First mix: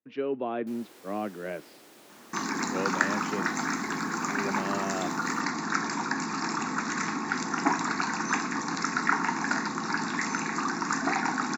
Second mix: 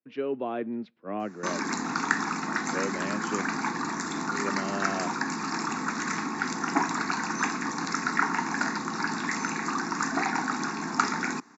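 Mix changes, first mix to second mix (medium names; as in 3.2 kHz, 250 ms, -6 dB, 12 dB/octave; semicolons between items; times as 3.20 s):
first sound: muted; second sound: entry -0.90 s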